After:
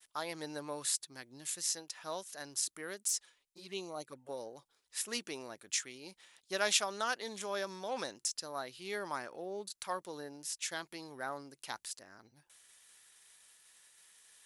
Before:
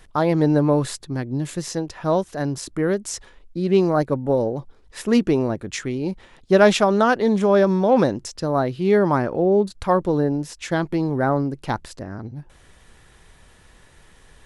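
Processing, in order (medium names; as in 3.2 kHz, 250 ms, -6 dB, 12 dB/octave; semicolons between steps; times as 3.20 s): 3.08–4.29 s: touch-sensitive flanger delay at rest 8.9 ms, full sweep at -14.5 dBFS; expander -48 dBFS; differentiator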